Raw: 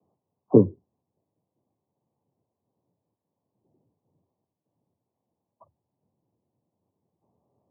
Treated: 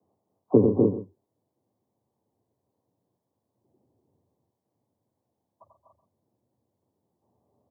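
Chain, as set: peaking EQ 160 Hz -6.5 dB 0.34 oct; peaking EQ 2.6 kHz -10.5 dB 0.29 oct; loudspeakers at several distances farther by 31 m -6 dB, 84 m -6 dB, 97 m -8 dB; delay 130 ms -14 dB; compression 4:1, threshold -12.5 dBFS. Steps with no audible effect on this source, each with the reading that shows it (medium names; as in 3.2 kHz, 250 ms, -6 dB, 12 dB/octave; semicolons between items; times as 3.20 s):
peaking EQ 2.6 kHz: input has nothing above 1.1 kHz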